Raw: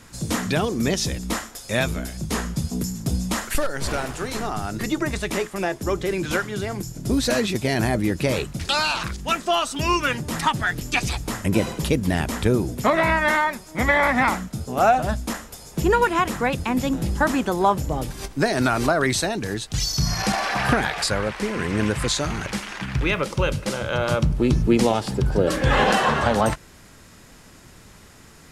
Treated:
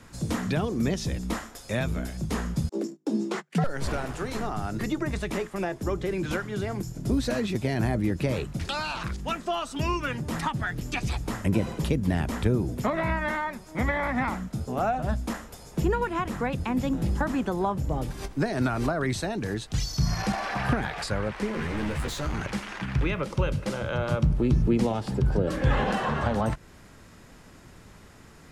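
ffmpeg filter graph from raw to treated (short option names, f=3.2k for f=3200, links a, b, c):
-filter_complex "[0:a]asettb=1/sr,asplit=3[a][b][c];[a]atrim=end=2.694[d];[b]atrim=start=2.69:end=3.64,asetpts=PTS-STARTPTS,afade=t=in:d=0.004:c=qsin,afade=t=out:st=0.946:d=0.004:c=qsin,lowpass=6.5k,agate=range=-38dB:threshold=-28dB:ratio=16:release=100:detection=peak,afreqshift=150[e];[c]atrim=start=3.636[f];[d][e]acrossfade=d=0.004:c1=hsin:c2=qsin[g];[g][f]acrossfade=d=0.004:c1=qsin:c2=hsin,asettb=1/sr,asplit=3[h][i][j];[h]atrim=end=21.524[k];[i]atrim=start=21.52:end=22.35,asetpts=PTS-STARTPTS,afade=t=in:d=0.004:c=qsin,afade=t=out:st=0.826:d=0.004:c=qsin,asubboost=boost=10:cutoff=76,asoftclip=type=hard:threshold=-25.5dB,asplit=2[l][m];[m]adelay=13,volume=-2.5dB[n];[l][n]amix=inputs=2:normalize=0,atrim=end_sample=36603[o];[j]atrim=start=22.346[p];[k][o]acrossfade=d=0.004:c1=hsin:c2=qsin[q];[q][p]acrossfade=d=0.004:c1=qsin:c2=hsin,acrossover=split=220[r][s];[s]acompressor=threshold=-28dB:ratio=2[t];[r][t]amix=inputs=2:normalize=0,highshelf=f=3k:g=-7.5,volume=-1.5dB"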